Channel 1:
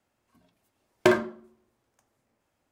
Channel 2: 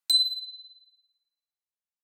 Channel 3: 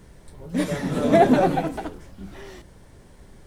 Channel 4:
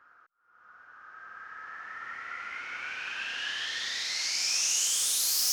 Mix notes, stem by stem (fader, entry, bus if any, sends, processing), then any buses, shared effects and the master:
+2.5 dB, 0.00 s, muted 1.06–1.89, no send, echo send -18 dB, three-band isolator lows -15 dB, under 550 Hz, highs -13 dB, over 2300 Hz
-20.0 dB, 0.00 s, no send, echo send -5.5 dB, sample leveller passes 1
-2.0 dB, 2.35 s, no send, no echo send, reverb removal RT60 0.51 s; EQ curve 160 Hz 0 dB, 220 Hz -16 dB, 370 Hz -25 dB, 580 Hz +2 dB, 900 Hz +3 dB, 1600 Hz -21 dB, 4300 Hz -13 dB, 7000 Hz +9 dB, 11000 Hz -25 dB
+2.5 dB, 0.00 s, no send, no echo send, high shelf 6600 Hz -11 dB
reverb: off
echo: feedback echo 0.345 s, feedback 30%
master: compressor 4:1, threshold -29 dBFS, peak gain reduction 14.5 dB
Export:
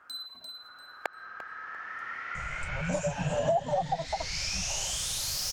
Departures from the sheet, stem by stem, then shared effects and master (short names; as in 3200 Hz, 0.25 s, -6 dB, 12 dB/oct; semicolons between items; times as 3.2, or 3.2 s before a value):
stem 1 +2.5 dB -> +11.5 dB; stem 3 -2.0 dB -> +8.5 dB